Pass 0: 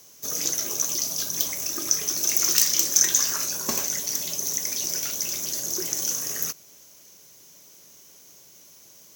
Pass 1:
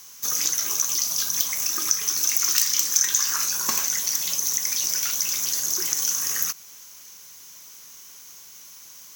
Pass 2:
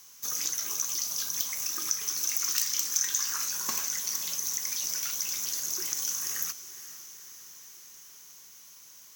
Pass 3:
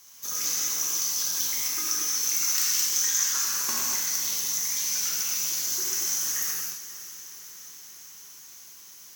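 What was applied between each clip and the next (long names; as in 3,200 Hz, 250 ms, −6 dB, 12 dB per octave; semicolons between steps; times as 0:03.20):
low shelf with overshoot 800 Hz −8.5 dB, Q 1.5; downward compressor 2 to 1, threshold −28 dBFS, peak gain reduction 8.5 dB; level +6 dB
feedback delay with all-pass diffusion 487 ms, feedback 63%, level −14.5 dB; level −7.5 dB
convolution reverb, pre-delay 3 ms, DRR −4.5 dB; level −1.5 dB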